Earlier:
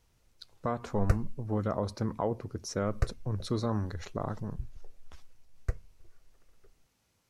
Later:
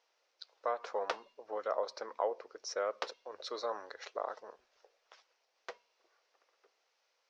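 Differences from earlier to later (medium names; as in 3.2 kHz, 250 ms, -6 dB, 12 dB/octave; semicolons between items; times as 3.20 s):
background: remove static phaser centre 900 Hz, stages 6; master: add elliptic band-pass 500–5500 Hz, stop band 50 dB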